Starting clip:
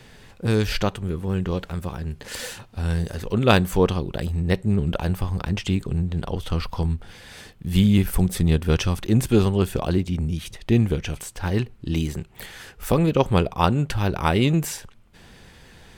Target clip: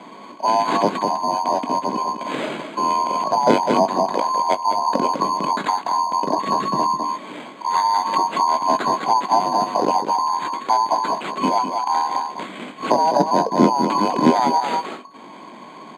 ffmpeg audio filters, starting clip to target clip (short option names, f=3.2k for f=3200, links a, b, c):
-filter_complex "[0:a]afftfilt=real='real(if(lt(b,272),68*(eq(floor(b/68),0)*3+eq(floor(b/68),1)*2+eq(floor(b/68),2)*1+eq(floor(b/68),3)*0)+mod(b,68),b),0)':imag='imag(if(lt(b,272),68*(eq(floor(b/68),0)*3+eq(floor(b/68),1)*2+eq(floor(b/68),2)*1+eq(floor(b/68),3)*0)+mod(b,68),b),0)':win_size=2048:overlap=0.75,equalizer=f=920:w=1.5:g=4.5,asplit=2[a][b];[b]aecho=0:1:202:0.398[c];[a][c]amix=inputs=2:normalize=0,acrusher=samples=8:mix=1:aa=0.000001,highpass=f=180:w=0.5412,highpass=f=180:w=1.3066,acompressor=threshold=-23dB:ratio=3,lowpass=5.6k,equalizer=f=240:w=0.46:g=14.5,bandreject=f=1.8k:w=24,asplit=2[d][e];[e]adelay=20,volume=-12dB[f];[d][f]amix=inputs=2:normalize=0,volume=2dB"